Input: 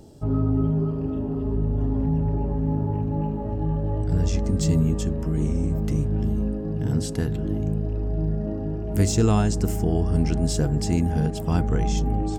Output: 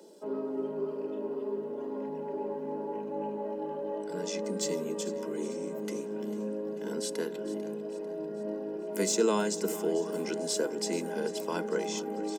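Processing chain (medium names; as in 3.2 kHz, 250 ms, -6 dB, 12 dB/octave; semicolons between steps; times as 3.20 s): steep high-pass 190 Hz 96 dB/octave; comb 2 ms, depth 72%; feedback delay 445 ms, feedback 52%, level -16 dB; trim -3.5 dB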